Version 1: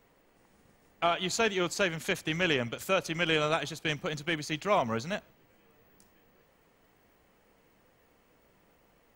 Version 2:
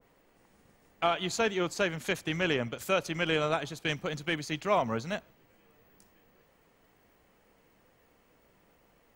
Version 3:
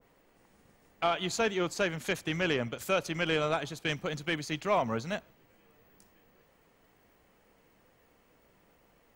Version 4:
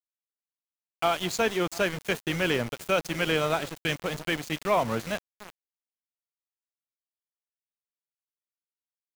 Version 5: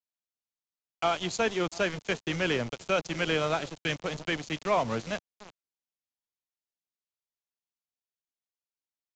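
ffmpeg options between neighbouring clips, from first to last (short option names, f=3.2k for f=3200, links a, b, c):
-af "adynamicequalizer=threshold=0.01:dfrequency=1700:dqfactor=0.7:tfrequency=1700:tqfactor=0.7:attack=5:release=100:ratio=0.375:range=3:mode=cutabove:tftype=highshelf"
-af "asoftclip=type=tanh:threshold=-15.5dB"
-filter_complex "[0:a]asplit=2[a][b];[b]adelay=696,lowpass=f=1.5k:p=1,volume=-16dB,asplit=2[c][d];[d]adelay=696,lowpass=f=1.5k:p=1,volume=0.29,asplit=2[e][f];[f]adelay=696,lowpass=f=1.5k:p=1,volume=0.29[g];[a][c][e][g]amix=inputs=4:normalize=0,aeval=exprs='val(0)*gte(abs(val(0)),0.015)':c=same,volume=3.5dB"
-filter_complex "[0:a]acrossover=split=160|1400|2000[a][b][c][d];[c]acrusher=bits=6:mix=0:aa=0.000001[e];[a][b][e][d]amix=inputs=4:normalize=0,aresample=16000,aresample=44100,volume=-2dB"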